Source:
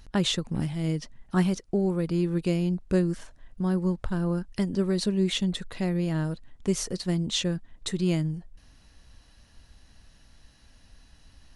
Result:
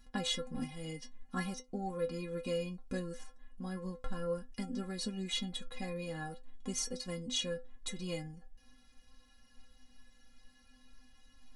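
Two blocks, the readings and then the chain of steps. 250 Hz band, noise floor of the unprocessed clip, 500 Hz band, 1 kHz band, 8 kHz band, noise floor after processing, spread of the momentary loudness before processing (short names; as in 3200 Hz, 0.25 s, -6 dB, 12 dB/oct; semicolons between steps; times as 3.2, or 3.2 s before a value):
-14.5 dB, -57 dBFS, -9.5 dB, -6.0 dB, -5.5 dB, -64 dBFS, 6 LU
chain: metallic resonator 250 Hz, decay 0.23 s, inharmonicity 0.008; gain +6 dB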